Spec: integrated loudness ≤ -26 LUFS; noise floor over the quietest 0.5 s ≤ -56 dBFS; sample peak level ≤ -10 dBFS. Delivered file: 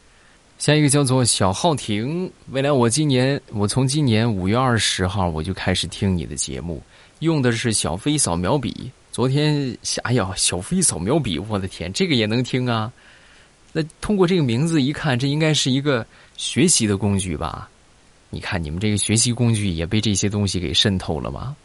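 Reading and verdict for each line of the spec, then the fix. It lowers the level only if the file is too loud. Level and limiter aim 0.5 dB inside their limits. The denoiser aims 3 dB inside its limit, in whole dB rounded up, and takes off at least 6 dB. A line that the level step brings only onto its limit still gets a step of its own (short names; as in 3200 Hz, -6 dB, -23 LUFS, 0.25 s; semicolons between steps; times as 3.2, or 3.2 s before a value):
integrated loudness -20.0 LUFS: fail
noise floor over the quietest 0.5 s -52 dBFS: fail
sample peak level -5.0 dBFS: fail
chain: gain -6.5 dB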